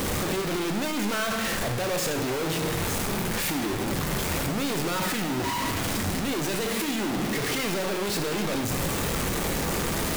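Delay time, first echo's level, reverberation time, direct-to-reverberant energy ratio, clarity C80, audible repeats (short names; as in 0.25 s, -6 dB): none, none, 1.0 s, 5.5 dB, 10.5 dB, none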